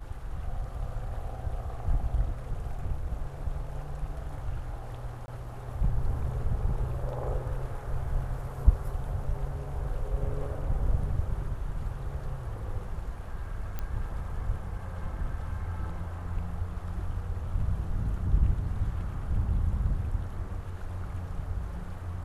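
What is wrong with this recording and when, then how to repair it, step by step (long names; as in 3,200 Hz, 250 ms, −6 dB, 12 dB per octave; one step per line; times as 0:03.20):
0:05.26–0:05.28: drop-out 20 ms
0:13.79: click −20 dBFS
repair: click removal
repair the gap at 0:05.26, 20 ms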